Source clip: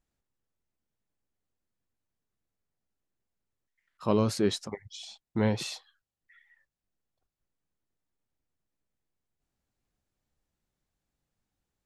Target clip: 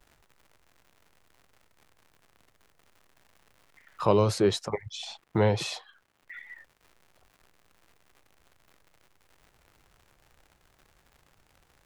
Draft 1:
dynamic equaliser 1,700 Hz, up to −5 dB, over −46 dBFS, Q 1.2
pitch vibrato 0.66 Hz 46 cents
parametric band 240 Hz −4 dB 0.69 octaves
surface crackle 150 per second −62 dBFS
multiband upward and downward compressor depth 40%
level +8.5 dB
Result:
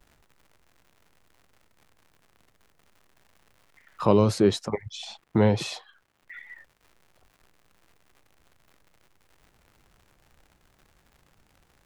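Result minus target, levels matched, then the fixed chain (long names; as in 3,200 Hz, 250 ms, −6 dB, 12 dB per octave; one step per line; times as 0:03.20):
250 Hz band +3.0 dB
dynamic equaliser 1,700 Hz, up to −5 dB, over −46 dBFS, Q 1.2
pitch vibrato 0.66 Hz 46 cents
parametric band 240 Hz −14 dB 0.69 octaves
surface crackle 150 per second −62 dBFS
multiband upward and downward compressor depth 40%
level +8.5 dB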